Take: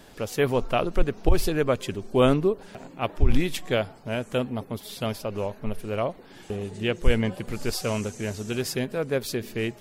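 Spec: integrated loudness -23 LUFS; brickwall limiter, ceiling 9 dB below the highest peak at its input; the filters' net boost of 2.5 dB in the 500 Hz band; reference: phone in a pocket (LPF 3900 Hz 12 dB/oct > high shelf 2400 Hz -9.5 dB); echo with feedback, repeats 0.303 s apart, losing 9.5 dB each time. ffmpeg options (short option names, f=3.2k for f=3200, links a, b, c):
-af "equalizer=f=500:t=o:g=3.5,alimiter=limit=-15dB:level=0:latency=1,lowpass=3.9k,highshelf=f=2.4k:g=-9.5,aecho=1:1:303|606|909|1212:0.335|0.111|0.0365|0.012,volume=5.5dB"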